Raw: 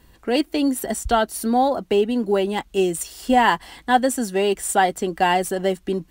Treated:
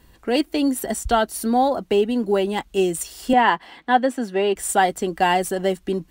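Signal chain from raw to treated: 3.33–4.56 s: three-band isolator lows -18 dB, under 160 Hz, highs -16 dB, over 4 kHz

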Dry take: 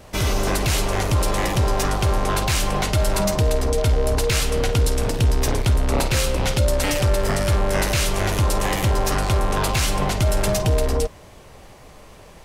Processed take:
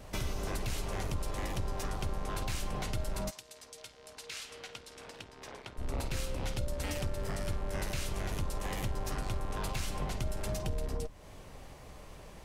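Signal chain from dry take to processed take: octave divider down 2 oct, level +3 dB; compression 3:1, threshold -28 dBFS, peak gain reduction 14.5 dB; 3.29–5.77 s: band-pass filter 7.6 kHz -> 1.4 kHz, Q 0.52; trim -7 dB

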